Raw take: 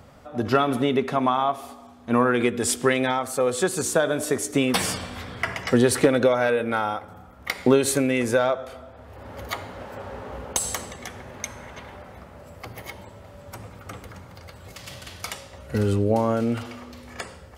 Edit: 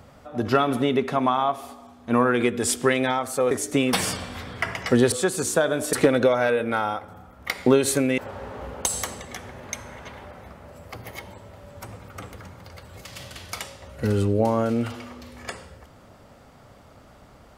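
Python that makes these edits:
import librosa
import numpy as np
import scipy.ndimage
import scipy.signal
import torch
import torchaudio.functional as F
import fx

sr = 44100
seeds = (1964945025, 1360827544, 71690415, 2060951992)

y = fx.edit(x, sr, fx.move(start_s=3.51, length_s=0.81, to_s=5.93),
    fx.cut(start_s=8.18, length_s=1.71), tone=tone)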